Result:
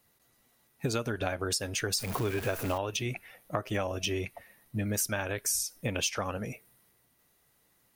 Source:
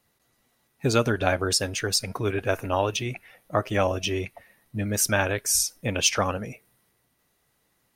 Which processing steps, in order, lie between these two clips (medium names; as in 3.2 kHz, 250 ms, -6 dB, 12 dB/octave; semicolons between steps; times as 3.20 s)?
1.98–2.78 s: jump at every zero crossing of -30.5 dBFS; treble shelf 11 kHz +7.5 dB; compression 12:1, threshold -26 dBFS, peak gain reduction 12 dB; trim -1 dB